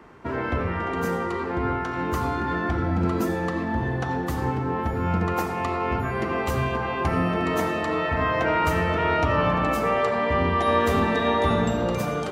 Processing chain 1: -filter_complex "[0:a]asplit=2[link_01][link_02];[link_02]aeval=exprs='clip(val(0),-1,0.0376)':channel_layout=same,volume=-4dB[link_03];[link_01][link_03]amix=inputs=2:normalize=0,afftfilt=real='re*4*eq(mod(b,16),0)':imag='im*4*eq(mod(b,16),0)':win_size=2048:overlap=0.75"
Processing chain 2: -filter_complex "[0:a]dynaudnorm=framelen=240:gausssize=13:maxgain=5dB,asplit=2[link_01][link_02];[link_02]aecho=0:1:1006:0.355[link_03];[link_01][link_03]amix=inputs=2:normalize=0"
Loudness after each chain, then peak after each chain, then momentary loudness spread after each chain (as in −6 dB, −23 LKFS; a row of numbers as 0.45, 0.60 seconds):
−24.5, −20.0 LKFS; −10.0, −4.5 dBFS; 6, 8 LU